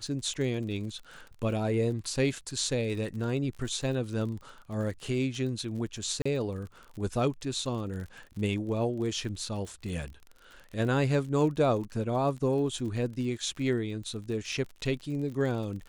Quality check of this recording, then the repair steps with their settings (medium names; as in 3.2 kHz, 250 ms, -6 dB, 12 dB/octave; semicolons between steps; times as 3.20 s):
crackle 43 per s -38 dBFS
6.22–6.25 s: dropout 35 ms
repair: de-click; interpolate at 6.22 s, 35 ms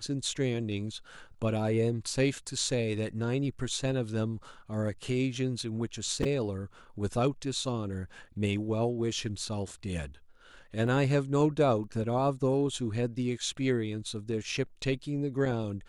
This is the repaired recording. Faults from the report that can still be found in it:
nothing left